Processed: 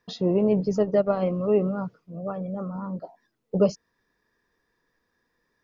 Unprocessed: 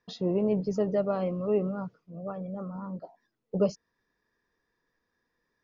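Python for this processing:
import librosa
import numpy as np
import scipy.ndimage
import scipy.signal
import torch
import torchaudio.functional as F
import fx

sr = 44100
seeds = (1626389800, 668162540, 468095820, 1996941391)

y = fx.transient(x, sr, attack_db=3, sustain_db=-9, at=(0.78, 1.3))
y = y * librosa.db_to_amplitude(5.0)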